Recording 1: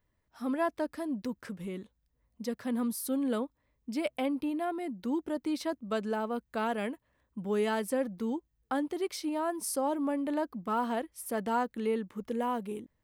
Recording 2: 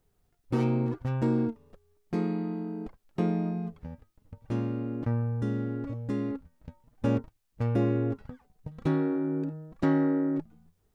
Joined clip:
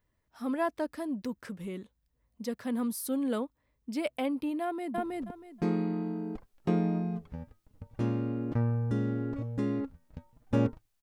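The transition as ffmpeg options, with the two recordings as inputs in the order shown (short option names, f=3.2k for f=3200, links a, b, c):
-filter_complex "[0:a]apad=whole_dur=11.02,atrim=end=11.02,atrim=end=4.982[a];[1:a]atrim=start=1.488:end=7.53[b];[a][b]acrossfade=d=0.004:c1=hsin:c2=hsin,asplit=2[c][d];[d]afade=t=in:st=4.62:d=0.01,afade=t=out:st=4.98:d=0.01,aecho=0:1:320|640|960:1|0.2|0.04[e];[c][e]amix=inputs=2:normalize=0"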